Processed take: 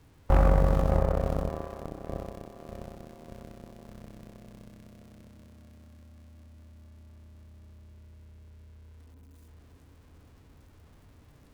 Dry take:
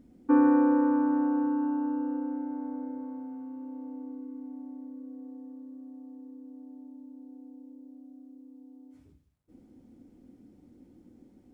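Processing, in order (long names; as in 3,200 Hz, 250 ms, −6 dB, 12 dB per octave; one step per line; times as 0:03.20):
converter with a step at zero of −39.5 dBFS
on a send: delay with a low-pass on its return 598 ms, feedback 57%, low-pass 1,900 Hz, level −5 dB
on the sum: frequency shifter −340 Hz
harmonic generator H 6 −14 dB, 7 −15 dB, 8 −19 dB, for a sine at −12 dBFS
mains-hum notches 60/120/180/240 Hz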